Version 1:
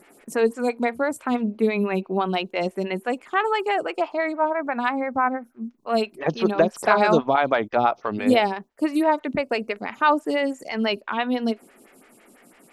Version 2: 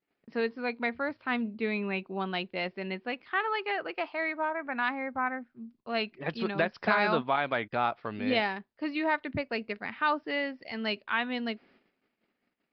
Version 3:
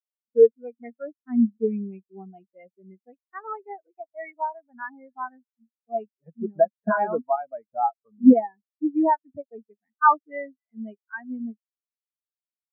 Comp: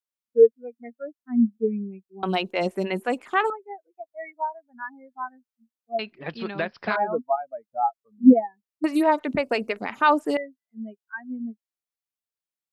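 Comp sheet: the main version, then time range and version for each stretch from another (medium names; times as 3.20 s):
3
2.23–3.50 s: from 1
5.99–6.96 s: from 2
8.84–10.37 s: from 1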